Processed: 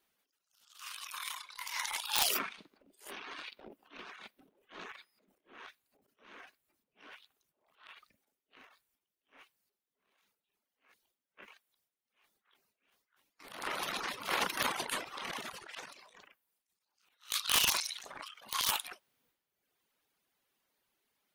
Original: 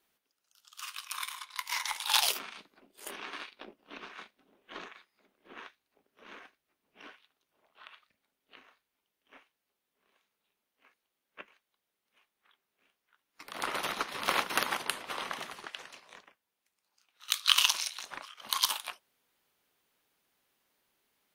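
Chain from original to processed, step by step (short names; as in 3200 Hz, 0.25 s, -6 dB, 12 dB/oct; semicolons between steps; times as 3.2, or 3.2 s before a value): transient shaper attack -8 dB, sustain +11 dB; reverb removal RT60 0.92 s; wrapped overs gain 15.5 dB; gain -2 dB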